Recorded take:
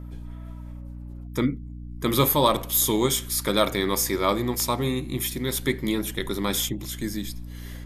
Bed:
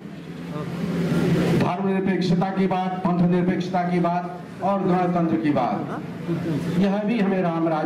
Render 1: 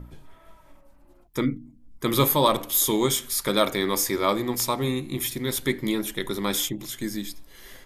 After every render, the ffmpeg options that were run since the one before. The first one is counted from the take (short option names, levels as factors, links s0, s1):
-af "bandreject=f=60:t=h:w=4,bandreject=f=120:t=h:w=4,bandreject=f=180:t=h:w=4,bandreject=f=240:t=h:w=4,bandreject=f=300:t=h:w=4"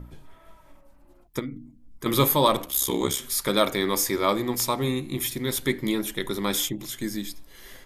-filter_complex "[0:a]asettb=1/sr,asplit=3[s0][s1][s2];[s0]atrim=end=1.394[s3];[s1]atrim=start=1.39:end=2.06,asetpts=PTS-STARTPTS,afade=t=in:d=0.004:c=qsin,afade=t=out:st=0.666:d=0.004:c=qsin,acompressor=threshold=0.0282:ratio=4:attack=3.2:release=140:knee=1:detection=peak[s4];[s2]atrim=start=2.056[s5];[s3][s4]acrossfade=d=0.004:c1=hsin:c2=qsin[s6];[s6][s5]acrossfade=d=0.004:c1=qsin:c2=hsin,asettb=1/sr,asplit=3[s7][s8][s9];[s7]atrim=end=2.654[s10];[s8]atrim=start=2.65:end=3.19,asetpts=PTS-STARTPTS,afade=t=in:d=0.004:c=qsin,afade=t=out:st=0.536:d=0.004:c=qsin,aeval=exprs='val(0)*sin(2*PI*33*n/s)':c=same[s11];[s9]atrim=start=3.186[s12];[s10][s11]acrossfade=d=0.004:c1=hsin:c2=qsin[s13];[s13][s12]acrossfade=d=0.004:c1=qsin:c2=hsin"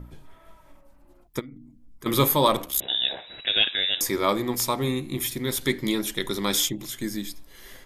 -filter_complex "[0:a]asplit=3[s0][s1][s2];[s0]afade=t=out:st=1.4:d=0.02[s3];[s1]acompressor=threshold=0.00562:ratio=2:attack=3.2:release=140:knee=1:detection=peak,afade=t=in:st=1.4:d=0.02,afade=t=out:st=2.05:d=0.02[s4];[s2]afade=t=in:st=2.05:d=0.02[s5];[s3][s4][s5]amix=inputs=3:normalize=0,asettb=1/sr,asplit=3[s6][s7][s8];[s6]atrim=end=2.804[s9];[s7]atrim=start=2.8:end=4.01,asetpts=PTS-STARTPTS,afade=t=in:d=0.004:c=qsin,afade=t=out:st=1.206:d=0.004:c=qsin,lowpass=f=3300:t=q:w=0.5098,lowpass=f=3300:t=q:w=0.6013,lowpass=f=3300:t=q:w=0.9,lowpass=f=3300:t=q:w=2.563,afreqshift=-3900[s10];[s8]atrim=start=4.006[s11];[s9][s10]acrossfade=d=0.004:c1=hsin:c2=qsin[s12];[s12][s11]acrossfade=d=0.004:c1=qsin:c2=hsin,asettb=1/sr,asplit=3[s13][s14][s15];[s13]atrim=end=5.614[s16];[s14]atrim=start=5.61:end=6.8,asetpts=PTS-STARTPTS,afade=t=in:d=0.004:c=qsin,afade=t=out:st=1.186:d=0.004:c=qsin,equalizer=f=5100:t=o:w=1.4:g=5.5[s17];[s15]atrim=start=6.796[s18];[s16][s17]acrossfade=d=0.004:c1=hsin:c2=qsin[s19];[s19][s18]acrossfade=d=0.004:c1=qsin:c2=hsin"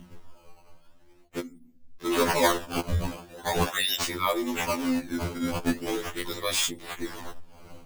-af "acrusher=samples=14:mix=1:aa=0.000001:lfo=1:lforange=22.4:lforate=0.42,afftfilt=real='re*2*eq(mod(b,4),0)':imag='im*2*eq(mod(b,4),0)':win_size=2048:overlap=0.75"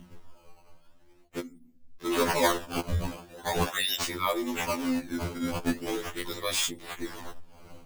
-af "volume=0.794"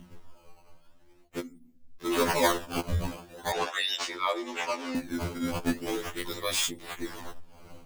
-filter_complex "[0:a]asettb=1/sr,asplit=3[s0][s1][s2];[s0]atrim=end=3.524[s3];[s1]atrim=start=3.52:end=4.95,asetpts=PTS-STARTPTS,afade=t=in:d=0.004:c=qsin,afade=t=out:st=1.426:d=0.004:c=qsin,acrossover=split=320 7200:gain=0.0794 1 0.1[s4][s5][s6];[s4][s5][s6]amix=inputs=3:normalize=0[s7];[s2]atrim=start=4.946[s8];[s3][s7]acrossfade=d=0.004:c1=hsin:c2=qsin[s9];[s9][s8]acrossfade=d=0.004:c1=qsin:c2=hsin"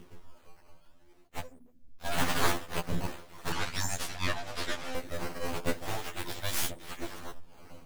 -af "aeval=exprs='abs(val(0))':c=same"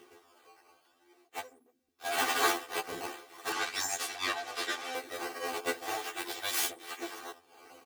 -af "highpass=380,aecho=1:1:2.6:0.73"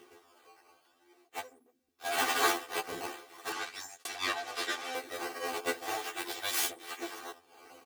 -filter_complex "[0:a]asplit=2[s0][s1];[s0]atrim=end=4.05,asetpts=PTS-STARTPTS,afade=t=out:st=3.3:d=0.75[s2];[s1]atrim=start=4.05,asetpts=PTS-STARTPTS,afade=t=in:d=0.004:c=hsin[s3];[s2][s3]concat=n=2:v=0:a=1"